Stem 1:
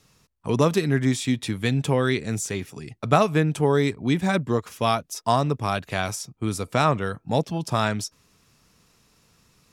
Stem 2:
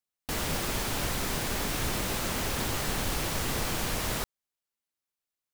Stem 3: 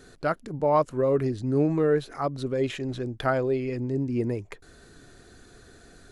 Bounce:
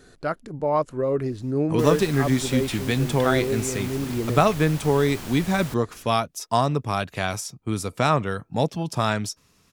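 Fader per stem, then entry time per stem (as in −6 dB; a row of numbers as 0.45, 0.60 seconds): 0.0, −6.5, −0.5 decibels; 1.25, 1.50, 0.00 seconds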